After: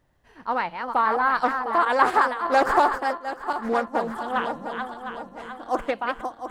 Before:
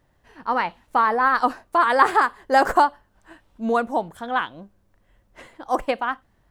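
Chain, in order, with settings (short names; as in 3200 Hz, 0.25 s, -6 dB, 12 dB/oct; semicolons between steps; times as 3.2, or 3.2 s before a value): regenerating reverse delay 0.353 s, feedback 67%, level -6 dB; 1.85–3.95 expander -20 dBFS; Doppler distortion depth 0.2 ms; gain -3 dB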